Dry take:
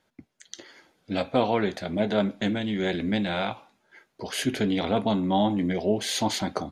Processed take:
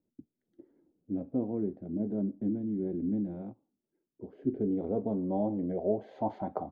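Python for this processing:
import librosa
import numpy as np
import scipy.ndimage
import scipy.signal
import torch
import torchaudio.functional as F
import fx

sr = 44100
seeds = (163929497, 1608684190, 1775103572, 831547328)

y = fx.filter_sweep_lowpass(x, sr, from_hz=310.0, to_hz=800.0, start_s=4.09, end_s=6.6, q=2.3)
y = fx.upward_expand(y, sr, threshold_db=-47.0, expansion=1.5, at=(3.38, 4.27))
y = y * 10.0 ** (-9.0 / 20.0)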